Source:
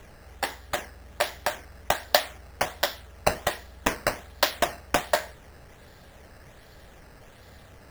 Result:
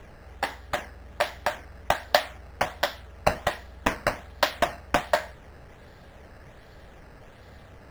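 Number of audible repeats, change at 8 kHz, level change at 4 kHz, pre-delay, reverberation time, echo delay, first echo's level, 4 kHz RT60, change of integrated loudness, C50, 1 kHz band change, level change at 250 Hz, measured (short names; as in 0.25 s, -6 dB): none, -6.0 dB, -2.5 dB, none, none, none, none, none, 0.0 dB, none, +1.5 dB, +1.0 dB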